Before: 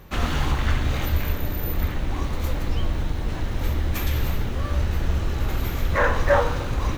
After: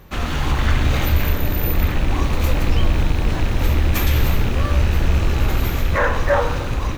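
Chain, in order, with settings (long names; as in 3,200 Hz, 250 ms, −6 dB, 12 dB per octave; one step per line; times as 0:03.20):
loose part that buzzes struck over −25 dBFS, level −28 dBFS
in parallel at −0.5 dB: brickwall limiter −15 dBFS, peak gain reduction 8.5 dB
on the sum: automatic gain control
level −4.5 dB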